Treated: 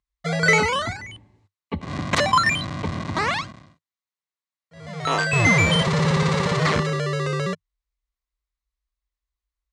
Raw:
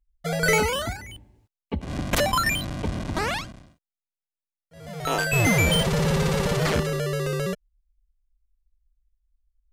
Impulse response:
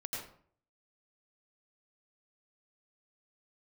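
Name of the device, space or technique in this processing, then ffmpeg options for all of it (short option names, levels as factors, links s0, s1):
car door speaker: -af "highpass=97,equalizer=f=98:t=q:w=4:g=6,equalizer=f=160:t=q:w=4:g=4,equalizer=f=1100:t=q:w=4:g=10,equalizer=f=2000:t=q:w=4:g=7,equalizer=f=4000:t=q:w=4:g=5,lowpass=f=8100:w=0.5412,lowpass=f=8100:w=1.3066"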